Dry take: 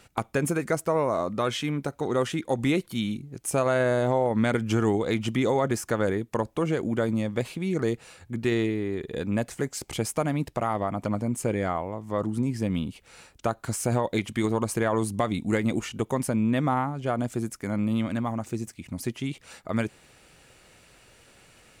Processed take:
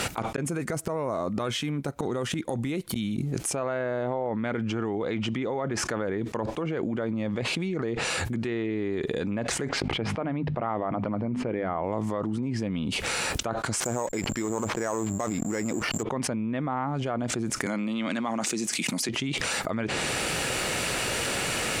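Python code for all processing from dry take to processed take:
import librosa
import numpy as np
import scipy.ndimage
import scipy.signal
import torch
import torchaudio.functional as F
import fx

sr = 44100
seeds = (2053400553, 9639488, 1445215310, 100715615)

y = fx.chain(x, sr, fx.low_shelf(hz=200.0, db=8.5),
    fx.gate_flip(shuts_db=-22.0, range_db=-32), at=(0.36, 3.18))
y = fx.chain(y, sr, fx.air_absorb(metres=380.0),
    fx.hum_notches(base_hz=50, count=5), at=(9.69, 11.84))
y = fx.chain(y, sr, fx.bass_treble(bass_db=-4, treble_db=-14),
    fx.backlash(play_db=-37.5),
    fx.resample_bad(factor=6, down='none', up='zero_stuff'), at=(13.8, 16.03))
y = fx.chain(y, sr, fx.highpass(hz=170.0, slope=24),
    fx.high_shelf(hz=2000.0, db=11.0), at=(17.66, 19.09))
y = fx.env_lowpass_down(y, sr, base_hz=2800.0, full_db=-21.0)
y = fx.low_shelf(y, sr, hz=86.0, db=-11.5)
y = fx.env_flatten(y, sr, amount_pct=100)
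y = y * 10.0 ** (-7.0 / 20.0)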